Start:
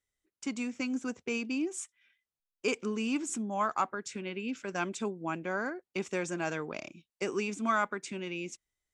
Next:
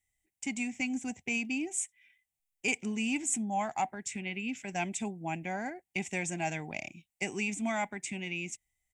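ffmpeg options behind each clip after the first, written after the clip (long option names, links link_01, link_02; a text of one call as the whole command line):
ffmpeg -i in.wav -af "firequalizer=gain_entry='entry(100,0);entry(480,-17);entry(760,1);entry(1200,-25);entry(2000,1);entry(4300,-11);entry(7700,2);entry(11000,0)':delay=0.05:min_phase=1,volume=6dB" out.wav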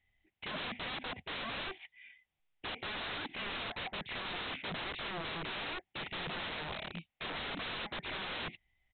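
ffmpeg -i in.wav -af "alimiter=level_in=2.5dB:limit=-24dB:level=0:latency=1:release=36,volume=-2.5dB,aresample=8000,aeval=exprs='(mod(141*val(0)+1,2)-1)/141':channel_layout=same,aresample=44100,volume=8dB" out.wav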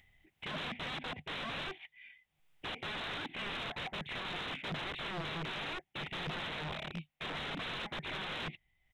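ffmpeg -i in.wav -af "equalizer=frequency=150:width_type=o:width=0.31:gain=8,acompressor=mode=upward:threshold=-58dB:ratio=2.5,aeval=exprs='0.0376*(cos(1*acos(clip(val(0)/0.0376,-1,1)))-cos(1*PI/2))+0.00944*(cos(2*acos(clip(val(0)/0.0376,-1,1)))-cos(2*PI/2))+0.000944*(cos(4*acos(clip(val(0)/0.0376,-1,1)))-cos(4*PI/2))+0.0015*(cos(5*acos(clip(val(0)/0.0376,-1,1)))-cos(5*PI/2))+0.000668*(cos(8*acos(clip(val(0)/0.0376,-1,1)))-cos(8*PI/2))':channel_layout=same,volume=-1dB" out.wav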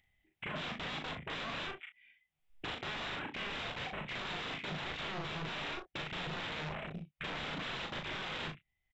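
ffmpeg -i in.wav -af "afwtdn=0.00562,acompressor=threshold=-48dB:ratio=4,aecho=1:1:38|66:0.631|0.188,volume=7dB" out.wav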